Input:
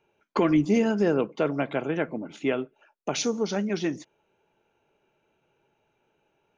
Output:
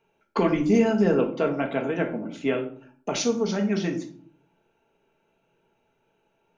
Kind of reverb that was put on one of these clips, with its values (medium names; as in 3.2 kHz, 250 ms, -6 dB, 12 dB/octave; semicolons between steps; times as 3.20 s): simulated room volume 480 m³, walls furnished, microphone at 1.6 m; trim -1 dB